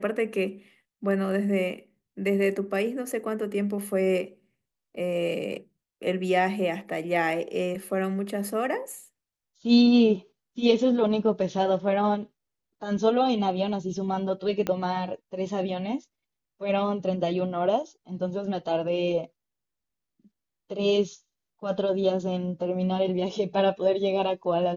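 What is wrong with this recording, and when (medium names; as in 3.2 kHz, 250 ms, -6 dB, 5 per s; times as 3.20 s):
14.67 s: pop -14 dBFS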